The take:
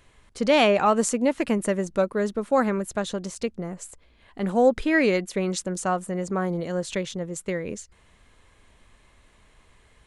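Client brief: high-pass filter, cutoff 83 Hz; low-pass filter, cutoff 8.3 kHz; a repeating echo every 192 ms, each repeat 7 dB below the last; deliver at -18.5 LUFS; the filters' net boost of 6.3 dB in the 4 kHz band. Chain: high-pass 83 Hz; low-pass 8.3 kHz; peaking EQ 4 kHz +8.5 dB; feedback delay 192 ms, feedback 45%, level -7 dB; trim +4.5 dB

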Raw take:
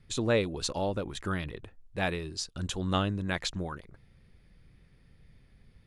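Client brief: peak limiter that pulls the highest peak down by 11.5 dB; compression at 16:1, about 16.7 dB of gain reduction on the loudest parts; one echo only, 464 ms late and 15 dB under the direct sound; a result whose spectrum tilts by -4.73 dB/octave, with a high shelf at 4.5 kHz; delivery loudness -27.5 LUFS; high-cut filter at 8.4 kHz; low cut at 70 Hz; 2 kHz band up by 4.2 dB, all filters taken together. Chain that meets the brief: high-pass 70 Hz; low-pass 8.4 kHz; peaking EQ 2 kHz +6.5 dB; treble shelf 4.5 kHz -6 dB; compression 16:1, threshold -37 dBFS; peak limiter -35.5 dBFS; delay 464 ms -15 dB; trim +19 dB

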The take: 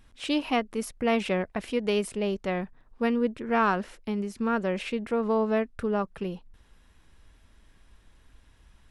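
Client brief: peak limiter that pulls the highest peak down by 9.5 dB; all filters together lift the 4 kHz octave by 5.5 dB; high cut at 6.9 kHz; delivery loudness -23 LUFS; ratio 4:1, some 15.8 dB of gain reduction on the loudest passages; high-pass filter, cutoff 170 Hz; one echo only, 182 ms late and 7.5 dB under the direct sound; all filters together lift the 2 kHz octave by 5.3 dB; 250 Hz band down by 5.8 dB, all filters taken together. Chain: high-pass 170 Hz; low-pass 6.9 kHz; peaking EQ 250 Hz -5.5 dB; peaking EQ 2 kHz +5.5 dB; peaking EQ 4 kHz +5.5 dB; compression 4:1, threshold -37 dBFS; peak limiter -31.5 dBFS; delay 182 ms -7.5 dB; trim +18.5 dB

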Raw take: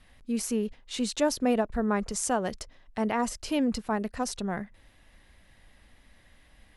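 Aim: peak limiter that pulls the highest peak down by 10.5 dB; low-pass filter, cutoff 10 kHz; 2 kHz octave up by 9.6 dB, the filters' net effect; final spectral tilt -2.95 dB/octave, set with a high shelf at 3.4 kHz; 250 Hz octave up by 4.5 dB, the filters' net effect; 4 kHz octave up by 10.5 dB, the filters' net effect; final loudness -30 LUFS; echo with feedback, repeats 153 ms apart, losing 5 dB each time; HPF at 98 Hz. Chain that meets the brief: high-pass 98 Hz; low-pass 10 kHz; peaking EQ 250 Hz +5 dB; peaking EQ 2 kHz +8.5 dB; treble shelf 3.4 kHz +9 dB; peaking EQ 4 kHz +4.5 dB; peak limiter -15.5 dBFS; feedback delay 153 ms, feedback 56%, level -5 dB; trim -5 dB

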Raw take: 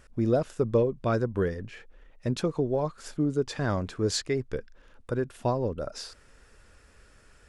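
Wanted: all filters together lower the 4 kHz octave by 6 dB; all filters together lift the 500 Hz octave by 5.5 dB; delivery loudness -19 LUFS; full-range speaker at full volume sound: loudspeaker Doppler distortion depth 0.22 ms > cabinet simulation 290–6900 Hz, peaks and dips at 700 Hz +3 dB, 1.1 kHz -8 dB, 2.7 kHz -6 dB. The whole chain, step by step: peaking EQ 500 Hz +7 dB; peaking EQ 4 kHz -6.5 dB; loudspeaker Doppler distortion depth 0.22 ms; cabinet simulation 290–6900 Hz, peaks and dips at 700 Hz +3 dB, 1.1 kHz -8 dB, 2.7 kHz -6 dB; trim +7 dB

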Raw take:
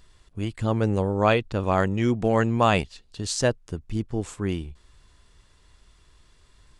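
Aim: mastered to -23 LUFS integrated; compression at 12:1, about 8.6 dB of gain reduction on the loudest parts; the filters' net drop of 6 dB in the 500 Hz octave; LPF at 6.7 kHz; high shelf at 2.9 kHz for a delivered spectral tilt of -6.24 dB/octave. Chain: low-pass 6.7 kHz; peaking EQ 500 Hz -7.5 dB; treble shelf 2.9 kHz -6.5 dB; compression 12:1, threshold -26 dBFS; trim +10.5 dB

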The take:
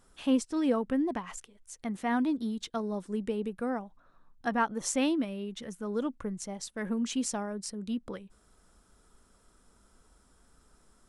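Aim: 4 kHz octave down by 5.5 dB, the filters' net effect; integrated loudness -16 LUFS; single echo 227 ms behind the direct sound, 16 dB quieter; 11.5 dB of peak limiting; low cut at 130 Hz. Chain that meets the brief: high-pass 130 Hz; peaking EQ 4 kHz -8 dB; peak limiter -27.5 dBFS; delay 227 ms -16 dB; trim +21 dB

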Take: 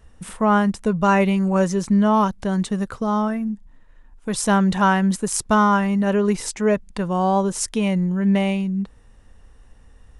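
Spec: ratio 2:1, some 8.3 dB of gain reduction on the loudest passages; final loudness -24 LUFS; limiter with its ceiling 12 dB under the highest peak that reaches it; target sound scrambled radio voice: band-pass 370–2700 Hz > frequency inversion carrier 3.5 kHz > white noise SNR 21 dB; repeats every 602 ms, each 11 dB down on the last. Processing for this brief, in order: compression 2:1, threshold -29 dBFS; peak limiter -22 dBFS; band-pass 370–2700 Hz; feedback delay 602 ms, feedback 28%, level -11 dB; frequency inversion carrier 3.5 kHz; white noise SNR 21 dB; trim +7.5 dB

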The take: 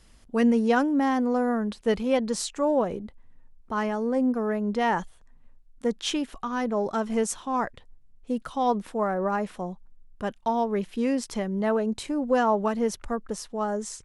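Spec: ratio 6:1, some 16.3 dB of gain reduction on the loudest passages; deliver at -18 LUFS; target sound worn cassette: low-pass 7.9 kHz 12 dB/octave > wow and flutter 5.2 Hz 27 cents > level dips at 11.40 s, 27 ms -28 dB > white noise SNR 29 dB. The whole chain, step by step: compression 6:1, threshold -36 dBFS; low-pass 7.9 kHz 12 dB/octave; wow and flutter 5.2 Hz 27 cents; level dips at 11.40 s, 27 ms -28 dB; white noise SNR 29 dB; trim +21.5 dB

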